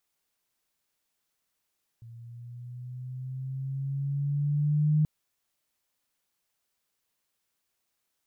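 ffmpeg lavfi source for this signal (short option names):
-f lavfi -i "aevalsrc='pow(10,(-19.5+24*(t/3.03-1))/20)*sin(2*PI*115*3.03/(5*log(2)/12)*(exp(5*log(2)/12*t/3.03)-1))':d=3.03:s=44100"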